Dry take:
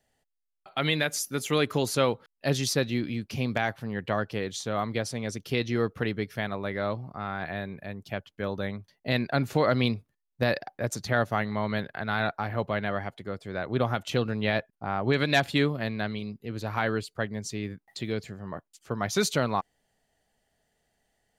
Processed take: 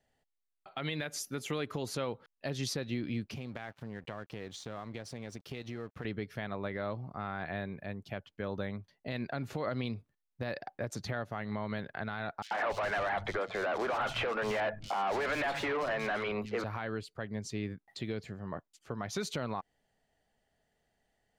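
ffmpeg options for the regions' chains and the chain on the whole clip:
ffmpeg -i in.wav -filter_complex "[0:a]asettb=1/sr,asplit=3[link_01][link_02][link_03];[link_01]atrim=end=3.334[link_04];[link_02]atrim=start=3.33:end=6.05,asetpts=PTS-STARTPTS,afade=type=in:duration=0.004:curve=qsin,afade=type=out:start_time=2.716:duration=0.004:curve=qsin,acompressor=threshold=-34dB:ratio=5:attack=3.2:release=140:knee=1:detection=peak,aeval=exprs='sgn(val(0))*max(abs(val(0))-0.00224,0)':channel_layout=same[link_05];[link_03]atrim=start=6.046[link_06];[link_04][link_05]acrossfade=duration=0.004:curve1=hsin:curve2=qsin[link_07];[link_07][link_06]acrossfade=duration=0.004:curve1=qsin:curve2=hsin,asettb=1/sr,asplit=3[link_08][link_09][link_10];[link_08]atrim=end=12.424[link_11];[link_09]atrim=start=12.42:end=16.64,asetpts=PTS-STARTPTS,afade=type=in:duration=0.004:curve=qsin,afade=type=out:start_time=4.216:duration=0.004:curve=qsin,acrossover=split=470 2100:gain=0.2 1 0.2[link_12][link_13][link_14];[link_12][link_13][link_14]amix=inputs=3:normalize=0,asplit=2[link_15][link_16];[link_16]highpass=frequency=720:poles=1,volume=34dB,asoftclip=type=tanh:threshold=-13.5dB[link_17];[link_15][link_17]amix=inputs=2:normalize=0,lowpass=frequency=3900:poles=1,volume=-6dB,acrossover=split=180|3700[link_18][link_19][link_20];[link_19]adelay=90[link_21];[link_18]adelay=280[link_22];[link_22][link_21][link_20]amix=inputs=3:normalize=0,atrim=end_sample=186102[link_23];[link_10]atrim=start=16.636[link_24];[link_11][link_23]acrossfade=duration=0.004:curve1=hsin:curve2=qsin[link_25];[link_25][link_24]acrossfade=duration=0.004:curve1=qsin:curve2=hsin,highshelf=frequency=6000:gain=-9.5,acompressor=threshold=-26dB:ratio=5,alimiter=limit=-22dB:level=0:latency=1:release=127,volume=-2.5dB" out.wav

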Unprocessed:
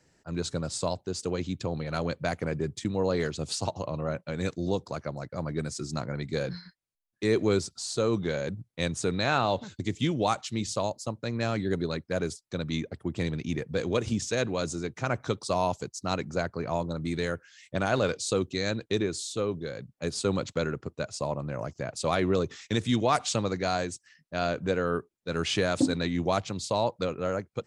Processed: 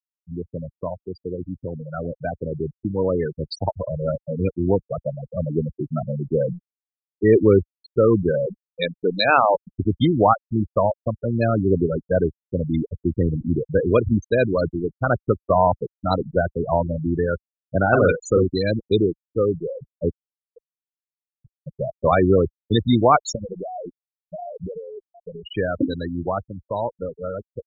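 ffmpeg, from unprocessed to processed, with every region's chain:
ffmpeg -i in.wav -filter_complex "[0:a]asettb=1/sr,asplit=3[link_01][link_02][link_03];[link_01]atrim=end=8.464[link_04];[link_02]atrim=start=8.46:end=9.67,asetpts=PTS-STARTPTS,afade=type=in:duration=0.004:curve=qsin,afade=type=out:start_time=1.206:duration=0.004:curve=qsin,aemphasis=mode=production:type=bsi,bandreject=frequency=50.86:width_type=h:width=4,bandreject=frequency=101.72:width_type=h:width=4,bandreject=frequency=152.58:width_type=h:width=4,adynamicsmooth=sensitivity=2.5:basefreq=1200[link_05];[link_03]atrim=start=9.666[link_06];[link_04][link_05]acrossfade=duration=0.004:curve1=hsin:curve2=qsin[link_07];[link_07][link_06]acrossfade=duration=0.004:curve1=qsin:curve2=hsin,asettb=1/sr,asplit=3[link_08][link_09][link_10];[link_08]atrim=end=17.884[link_11];[link_09]atrim=start=17.88:end=18.51,asetpts=PTS-STARTPTS,afade=type=in:duration=0.004:curve=qsin,afade=type=out:start_time=0.626:duration=0.004:curve=qsin,equalizer=frequency=600:width=4.3:gain=-3.5,asplit=2[link_12][link_13];[link_13]adelay=43,volume=-3.5dB[link_14];[link_12][link_14]amix=inputs=2:normalize=0,atrim=end_sample=27783[link_15];[link_10]atrim=start=18.506[link_16];[link_11][link_15]acrossfade=duration=0.004:curve1=hsin:curve2=qsin[link_17];[link_17][link_16]acrossfade=duration=0.004:curve1=qsin:curve2=hsin,asettb=1/sr,asplit=3[link_18][link_19][link_20];[link_18]atrim=end=20.124[link_21];[link_19]atrim=start=20.12:end=21.67,asetpts=PTS-STARTPTS,afade=type=in:duration=0.004:curve=qsin,afade=type=out:start_time=1.546:duration=0.004:curve=qsin,aeval=exprs='val(0)+0.00501*(sin(2*PI*60*n/s)+sin(2*PI*2*60*n/s)/2+sin(2*PI*3*60*n/s)/3+sin(2*PI*4*60*n/s)/4+sin(2*PI*5*60*n/s)/5)':channel_layout=same,acompressor=threshold=-39dB:ratio=5:attack=3.2:release=140:knee=1:detection=peak,aeval=exprs='sgn(val(0))*max(abs(val(0))-0.002,0)':channel_layout=same[link_22];[link_20]atrim=start=21.666[link_23];[link_21][link_22]acrossfade=duration=0.004:curve1=hsin:curve2=qsin[link_24];[link_24][link_23]acrossfade=duration=0.004:curve1=qsin:curve2=hsin,asettb=1/sr,asplit=3[link_25][link_26][link_27];[link_25]atrim=end=23.354[link_28];[link_26]atrim=start=23.35:end=25.55,asetpts=PTS-STARTPTS,afade=type=in:duration=0.004:curve=qsin,afade=type=out:start_time=2.196:duration=0.004:curve=qsin,highshelf=frequency=2400:gain=4.5,aecho=1:1:719:0.2,atrim=end_sample=97020,acompressor=threshold=-30dB:ratio=20:attack=3.2:release=140:knee=1:detection=peak[link_29];[link_27]atrim=start=25.546[link_30];[link_28][link_29]acrossfade=duration=0.004:curve1=hsin:curve2=qsin[link_31];[link_31][link_30]acrossfade=duration=0.004:curve1=qsin:curve2=hsin,afftfilt=real='re*gte(hypot(re,im),0.0891)':imag='im*gte(hypot(re,im),0.0891)':win_size=1024:overlap=0.75,dynaudnorm=framelen=340:gausssize=21:maxgain=10dB,asubboost=boost=5:cutoff=56,volume=2dB" out.wav

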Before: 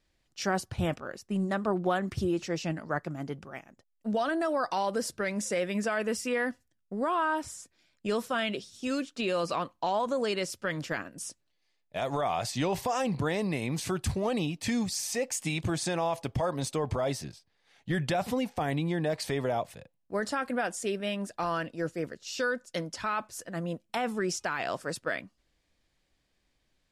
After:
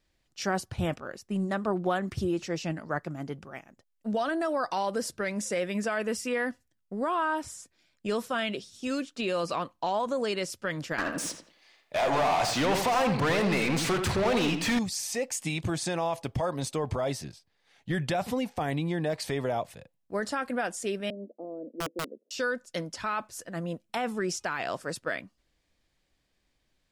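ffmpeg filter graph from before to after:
ffmpeg -i in.wav -filter_complex "[0:a]asettb=1/sr,asplit=3[link_01][link_02][link_03];[link_01]atrim=end=10.984[link_04];[link_02]atrim=start=10.98:end=14.79,asetpts=PTS-STARTPTS,afade=type=in:duration=0.004:curve=qsin,afade=type=out:start_time=3.806:duration=0.004:curve=qsin,asplit=2[link_05][link_06];[link_06]highpass=frequency=720:poles=1,volume=27dB,asoftclip=type=tanh:threshold=-20dB[link_07];[link_05][link_07]amix=inputs=2:normalize=0,lowpass=frequency=3200:poles=1,volume=-6dB,asplit=2[link_08][link_09];[link_09]adelay=85,lowpass=frequency=2600:poles=1,volume=-6dB,asplit=2[link_10][link_11];[link_11]adelay=85,lowpass=frequency=2600:poles=1,volume=0.31,asplit=2[link_12][link_13];[link_13]adelay=85,lowpass=frequency=2600:poles=1,volume=0.31,asplit=2[link_14][link_15];[link_15]adelay=85,lowpass=frequency=2600:poles=1,volume=0.31[link_16];[link_08][link_10][link_12][link_14][link_16]amix=inputs=5:normalize=0,atrim=end_sample=168021[link_17];[link_03]atrim=start=14.786[link_18];[link_04][link_17]acrossfade=duration=0.004:curve1=hsin:curve2=qsin[link_19];[link_19][link_18]acrossfade=duration=0.004:curve1=qsin:curve2=hsin,asettb=1/sr,asplit=3[link_20][link_21][link_22];[link_20]atrim=end=21.104[link_23];[link_21]atrim=start=21.1:end=22.31,asetpts=PTS-STARTPTS,afade=type=in:duration=0.004:curve=qsin,afade=type=out:start_time=1.206:duration=0.004:curve=qsin,asuperpass=centerf=360:order=8:qfactor=0.99,aeval=exprs='(mod(21.1*val(0)+1,2)-1)/21.1':channel_layout=same[link_24];[link_22]atrim=start=22.306[link_25];[link_23][link_24]acrossfade=duration=0.004:curve1=hsin:curve2=qsin[link_26];[link_26][link_25]acrossfade=duration=0.004:curve1=qsin:curve2=hsin" out.wav

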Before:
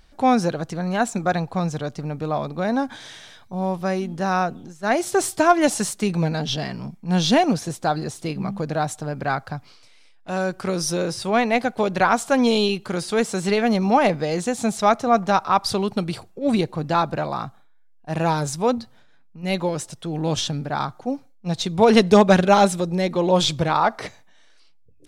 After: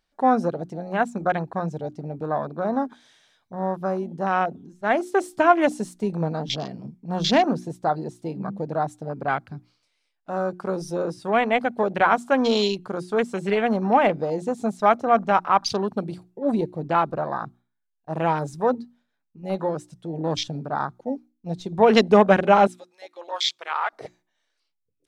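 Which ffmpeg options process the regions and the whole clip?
ffmpeg -i in.wav -filter_complex "[0:a]asettb=1/sr,asplit=3[link_01][link_02][link_03];[link_01]atrim=end=22.674[link_04];[link_02]atrim=start=22.67:end=23.93,asetpts=PTS-STARTPTS,afade=type=in:duration=0.004:curve=qsin,afade=type=out:start_time=1.256:duration=0.004:curve=qsin,highpass=1300,highshelf=frequency=7000:gain=-3.5[link_05];[link_03]atrim=start=23.926[link_06];[link_04][link_05]acrossfade=duration=0.004:curve1=hsin:curve2=qsin[link_07];[link_07][link_06]acrossfade=duration=0.004:curve1=qsin:curve2=hsin,afwtdn=0.0398,lowshelf=frequency=140:gain=-10.5,bandreject=frequency=60:width_type=h:width=6,bandreject=frequency=120:width_type=h:width=6,bandreject=frequency=180:width_type=h:width=6,bandreject=frequency=240:width_type=h:width=6,bandreject=frequency=300:width_type=h:width=6,bandreject=frequency=360:width_type=h:width=6" out.wav

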